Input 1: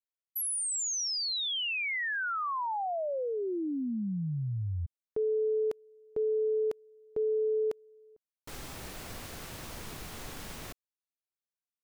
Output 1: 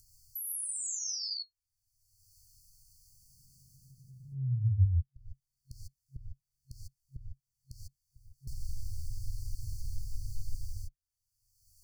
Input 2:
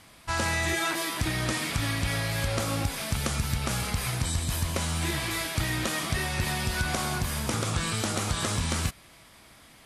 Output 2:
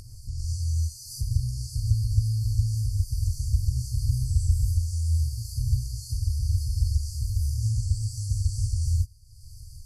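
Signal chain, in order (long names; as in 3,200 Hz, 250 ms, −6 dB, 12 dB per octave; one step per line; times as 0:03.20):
brick-wall band-stop 130–4,300 Hz
spectral tilt −2.5 dB per octave
reverb whose tail is shaped and stops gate 170 ms rising, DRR −7 dB
upward compression, threshold −23 dBFS
level −7.5 dB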